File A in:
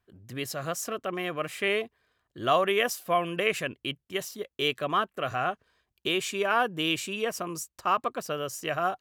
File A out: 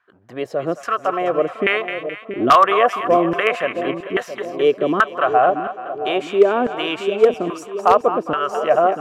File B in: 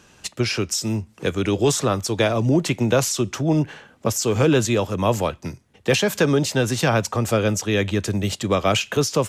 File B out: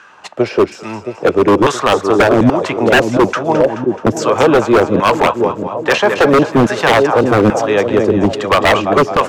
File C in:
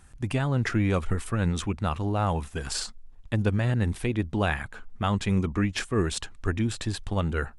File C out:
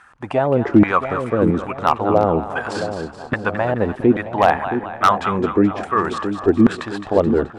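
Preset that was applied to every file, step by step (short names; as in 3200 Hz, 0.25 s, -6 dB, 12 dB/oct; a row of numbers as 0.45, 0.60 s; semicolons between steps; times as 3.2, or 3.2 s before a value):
LFO band-pass saw down 1.2 Hz 260–1500 Hz; split-band echo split 740 Hz, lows 0.671 s, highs 0.214 s, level -9 dB; wavefolder -22 dBFS; normalise peaks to -3 dBFS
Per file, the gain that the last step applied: +19.0, +19.0, +19.0 dB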